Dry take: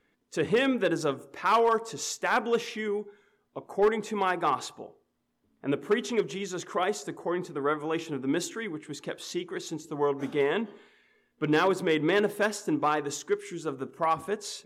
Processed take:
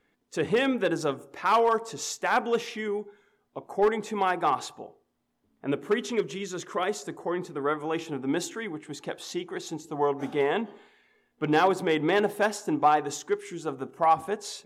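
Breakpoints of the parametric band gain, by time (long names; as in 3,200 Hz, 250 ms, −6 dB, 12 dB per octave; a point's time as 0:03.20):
parametric band 770 Hz 0.33 octaves
0:05.69 +4.5 dB
0:06.40 −7.5 dB
0:07.19 +2.5 dB
0:07.74 +2.5 dB
0:08.23 +10 dB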